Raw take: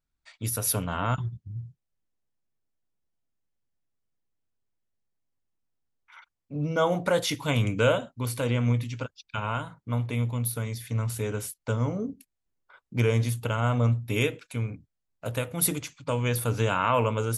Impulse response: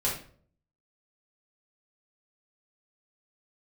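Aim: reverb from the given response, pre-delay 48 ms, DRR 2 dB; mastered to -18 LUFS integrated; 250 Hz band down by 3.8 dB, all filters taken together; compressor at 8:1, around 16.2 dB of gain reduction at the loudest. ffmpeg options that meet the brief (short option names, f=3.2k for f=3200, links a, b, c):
-filter_complex "[0:a]equalizer=f=250:t=o:g=-5,acompressor=threshold=-35dB:ratio=8,asplit=2[a][b];[1:a]atrim=start_sample=2205,adelay=48[c];[b][c]afir=irnorm=-1:irlink=0,volume=-10dB[d];[a][d]amix=inputs=2:normalize=0,volume=19dB"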